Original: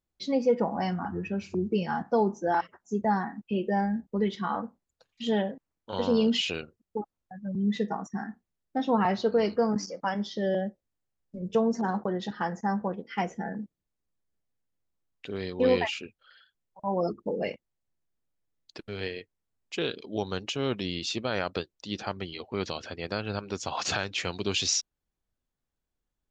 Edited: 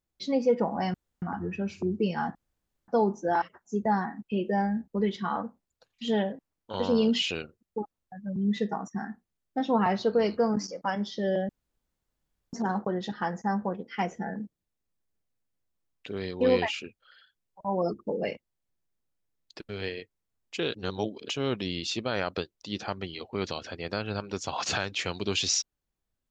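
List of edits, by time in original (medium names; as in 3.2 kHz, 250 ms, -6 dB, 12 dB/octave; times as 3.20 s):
0.94 s: insert room tone 0.28 s
2.07 s: insert room tone 0.53 s
10.68–11.72 s: room tone
19.93–20.48 s: reverse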